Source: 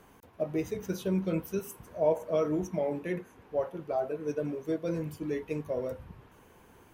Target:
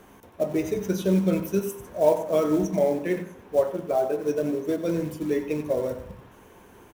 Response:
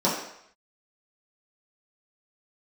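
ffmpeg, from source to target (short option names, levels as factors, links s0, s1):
-filter_complex "[0:a]acrusher=bits=6:mode=log:mix=0:aa=0.000001,asplit=2[s0][s1];[s1]adelay=93.29,volume=0.282,highshelf=f=4000:g=-2.1[s2];[s0][s2]amix=inputs=2:normalize=0,asplit=2[s3][s4];[1:a]atrim=start_sample=2205[s5];[s4][s5]afir=irnorm=-1:irlink=0,volume=0.0596[s6];[s3][s6]amix=inputs=2:normalize=0,volume=1.78"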